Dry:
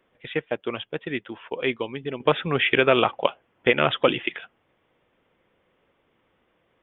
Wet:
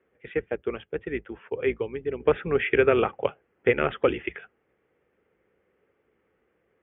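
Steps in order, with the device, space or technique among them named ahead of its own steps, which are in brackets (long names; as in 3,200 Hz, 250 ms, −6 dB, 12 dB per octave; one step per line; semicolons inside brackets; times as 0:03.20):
sub-octave bass pedal (sub-octave generator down 2 octaves, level −3 dB; loudspeaker in its box 68–2,300 Hz, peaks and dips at 86 Hz −9 dB, 140 Hz −4 dB, 260 Hz −3 dB, 420 Hz +7 dB, 650 Hz −5 dB, 1,000 Hz −8 dB)
level −2.5 dB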